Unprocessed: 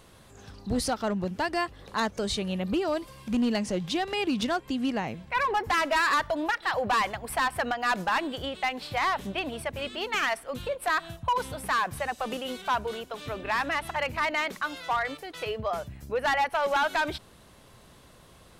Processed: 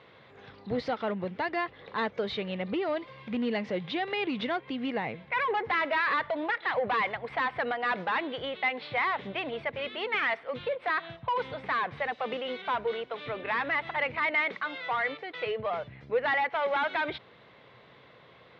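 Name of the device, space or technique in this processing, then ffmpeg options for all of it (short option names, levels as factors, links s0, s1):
overdrive pedal into a guitar cabinet: -filter_complex "[0:a]asplit=2[s0][s1];[s1]highpass=f=720:p=1,volume=3.16,asoftclip=type=tanh:threshold=0.0944[s2];[s0][s2]amix=inputs=2:normalize=0,lowpass=f=1700:p=1,volume=0.501,highpass=97,equalizer=f=130:t=q:w=4:g=7,equalizer=f=470:t=q:w=4:g=6,equalizer=f=2100:t=q:w=4:g=9,equalizer=f=3600:t=q:w=4:g=5,lowpass=f=4200:w=0.5412,lowpass=f=4200:w=1.3066,volume=0.708"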